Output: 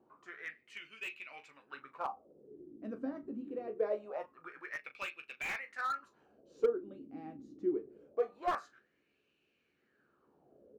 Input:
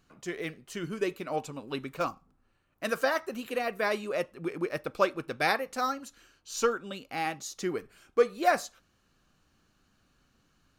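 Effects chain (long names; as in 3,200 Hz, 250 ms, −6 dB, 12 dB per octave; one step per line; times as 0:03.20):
noise in a band 32–390 Hz −50 dBFS
LFO wah 0.24 Hz 260–2,600 Hz, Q 6.5
on a send: ambience of single reflections 14 ms −7 dB, 38 ms −12 dB
on the sum: slew-rate limiting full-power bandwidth 23 Hz
level +3.5 dB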